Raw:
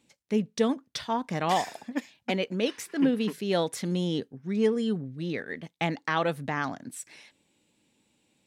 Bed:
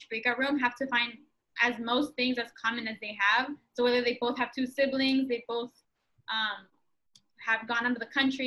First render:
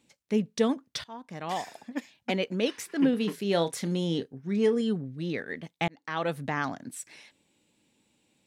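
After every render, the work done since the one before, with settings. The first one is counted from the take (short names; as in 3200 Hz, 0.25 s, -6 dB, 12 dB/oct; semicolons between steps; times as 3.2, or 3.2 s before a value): 1.04–2.4 fade in, from -17.5 dB; 3.1–4.81 doubler 30 ms -12 dB; 5.88–6.38 fade in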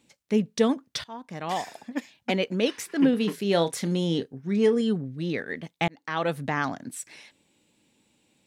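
gain +3 dB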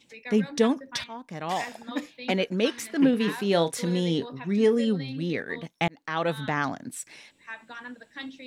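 add bed -12 dB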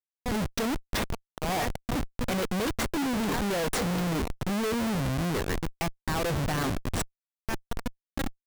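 Schmitt trigger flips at -32 dBFS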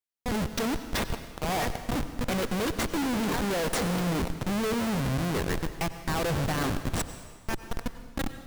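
plate-style reverb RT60 1.5 s, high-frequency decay 0.95×, pre-delay 80 ms, DRR 10.5 dB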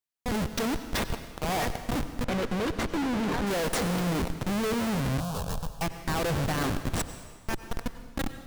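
2.24–3.47 LPF 3600 Hz 6 dB/oct; 5.2–5.82 fixed phaser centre 830 Hz, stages 4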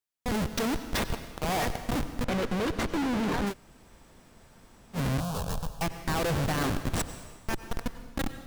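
3.51–4.96 room tone, crossfade 0.06 s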